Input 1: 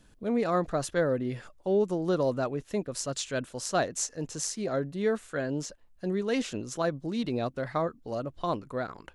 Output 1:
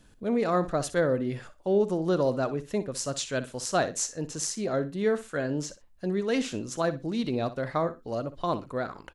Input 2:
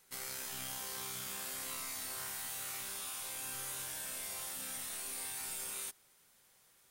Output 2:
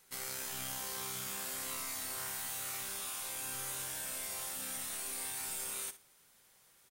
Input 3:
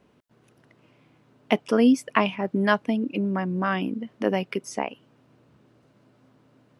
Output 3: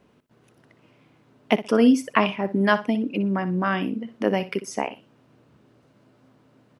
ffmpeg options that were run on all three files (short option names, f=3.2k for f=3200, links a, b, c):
-af "aecho=1:1:61|122:0.2|0.0379,volume=1.5dB"